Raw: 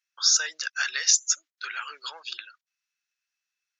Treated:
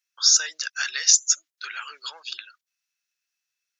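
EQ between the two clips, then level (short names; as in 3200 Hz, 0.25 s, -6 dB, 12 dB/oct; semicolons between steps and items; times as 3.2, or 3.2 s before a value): high shelf 3500 Hz +7.5 dB; -2.0 dB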